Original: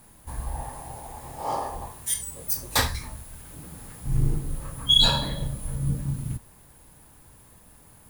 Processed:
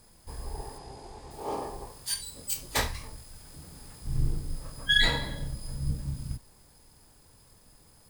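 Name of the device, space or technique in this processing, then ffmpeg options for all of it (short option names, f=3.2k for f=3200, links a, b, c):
octave pedal: -filter_complex "[0:a]asplit=2[a][b];[b]asetrate=22050,aresample=44100,atempo=2,volume=-1dB[c];[a][c]amix=inputs=2:normalize=0,asettb=1/sr,asplit=3[d][e][f];[d]atrim=end=0.784[g];[e]atrim=start=0.78:end=1.31,asetpts=PTS-STARTPTS,afade=t=in:d=0.004:c=qsin,afade=t=out:st=0.526:d=0.004:c=qsin,lowpass=7k[h];[f]atrim=start=1.306[i];[g][h]acrossfade=d=0.004:c1=hsin:c2=qsin[j];[j][i]acrossfade=d=0.004:c1=qsin:c2=hsin,volume=-7.5dB"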